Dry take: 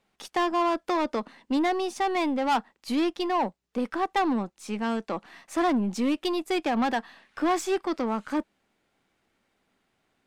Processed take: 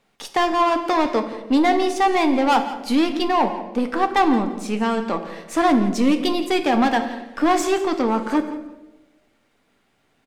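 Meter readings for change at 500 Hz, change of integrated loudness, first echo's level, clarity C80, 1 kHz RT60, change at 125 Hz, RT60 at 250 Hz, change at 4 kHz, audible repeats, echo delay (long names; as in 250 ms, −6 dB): +7.0 dB, +7.5 dB, −15.5 dB, 11.0 dB, 0.90 s, +7.0 dB, 1.3 s, +7.5 dB, 2, 170 ms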